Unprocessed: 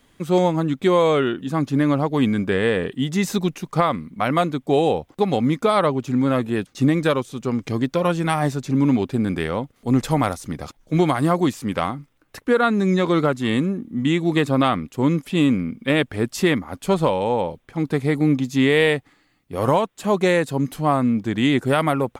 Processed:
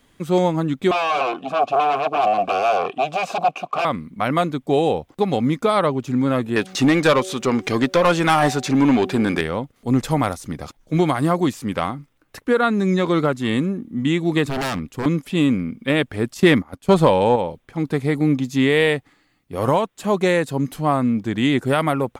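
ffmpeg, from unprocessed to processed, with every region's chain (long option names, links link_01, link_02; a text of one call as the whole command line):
ffmpeg -i in.wav -filter_complex "[0:a]asettb=1/sr,asplit=3[link_01][link_02][link_03];[link_01]atrim=end=0.914[link_04];[link_02]atrim=start=0.91:end=3.85,asetpts=PTS-STARTPTS,afade=type=in:duration=0.004:curve=qsin,afade=type=out:start_time=2.936:duration=0.004:curve=qsin,acrusher=bits=7:mode=log:mix=0:aa=0.000001,aeval=exprs='0.531*sin(PI/2*7.08*val(0)/0.531)':channel_layout=same,asplit=3[link_05][link_06][link_07];[link_05]bandpass=frequency=730:width_type=q:width=8,volume=0dB[link_08];[link_06]bandpass=frequency=1090:width_type=q:width=8,volume=-6dB[link_09];[link_07]bandpass=frequency=2440:width_type=q:width=8,volume=-9dB[link_10];[link_08][link_09][link_10]amix=inputs=3:normalize=0[link_11];[link_03]atrim=start=3.846[link_12];[link_04][link_11]acrossfade=duration=0.004:curve1=hsin:curve2=qsin[link_13];[link_13][link_12]acrossfade=duration=0.004:curve1=qsin:curve2=hsin,asettb=1/sr,asplit=3[link_14][link_15][link_16];[link_14]atrim=end=6.564[link_17];[link_15]atrim=start=6.56:end=9.41,asetpts=PTS-STARTPTS,afade=type=in:duration=0.004:curve=qsin,afade=type=out:start_time=2.846:duration=0.004:curve=qsin,bandreject=frequency=187.9:width_type=h:width=4,bandreject=frequency=375.8:width_type=h:width=4,bandreject=frequency=563.7:width_type=h:width=4,bandreject=frequency=751.6:width_type=h:width=4,acompressor=mode=upward:threshold=-28dB:ratio=2.5:attack=3.2:release=140:knee=2.83:detection=peak,asplit=2[link_18][link_19];[link_19]highpass=frequency=720:poles=1,volume=18dB,asoftclip=type=tanh:threshold=-6dB[link_20];[link_18][link_20]amix=inputs=2:normalize=0,lowpass=frequency=5300:poles=1,volume=-6dB[link_21];[link_16]atrim=start=9.406[link_22];[link_17][link_21]acrossfade=duration=0.004:curve1=hsin:curve2=qsin[link_23];[link_23][link_22]acrossfade=duration=0.004:curve1=qsin:curve2=hsin,asettb=1/sr,asplit=3[link_24][link_25][link_26];[link_24]atrim=end=14.454[link_27];[link_25]atrim=start=14.45:end=15.06,asetpts=PTS-STARTPTS,afade=type=in:duration=0.004:curve=qsin,afade=type=out:start_time=0.606:duration=0.004:curve=qsin,lowshelf=frequency=72:gain=7,aeval=exprs='0.119*(abs(mod(val(0)/0.119+3,4)-2)-1)':channel_layout=same[link_28];[link_26]atrim=start=15.056[link_29];[link_27][link_28]acrossfade=duration=0.004:curve1=hsin:curve2=qsin[link_30];[link_30][link_29]acrossfade=duration=0.004:curve1=qsin:curve2=hsin,asettb=1/sr,asplit=3[link_31][link_32][link_33];[link_31]atrim=end=16.344[link_34];[link_32]atrim=start=16.34:end=17.36,asetpts=PTS-STARTPTS,afade=type=in:duration=0.004:curve=qsin,afade=type=out:start_time=1.016:duration=0.004:curve=qsin,agate=range=-16dB:threshold=-29dB:ratio=16:release=100:detection=peak,acontrast=37[link_35];[link_33]atrim=start=17.356[link_36];[link_34][link_35]acrossfade=duration=0.004:curve1=hsin:curve2=qsin[link_37];[link_37][link_36]acrossfade=duration=0.004:curve1=qsin:curve2=hsin" out.wav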